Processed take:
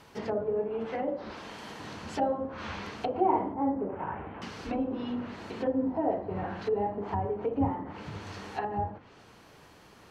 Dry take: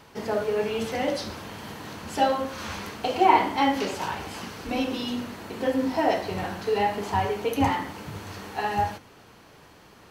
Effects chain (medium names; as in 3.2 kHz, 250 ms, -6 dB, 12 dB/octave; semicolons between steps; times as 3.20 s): 0.60–1.79 s: peaking EQ 100 Hz -10.5 dB 1.5 oct; 3.54–4.42 s: Gaussian low-pass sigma 4.5 samples; low-pass that closes with the level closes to 670 Hz, closed at -23.5 dBFS; trim -3 dB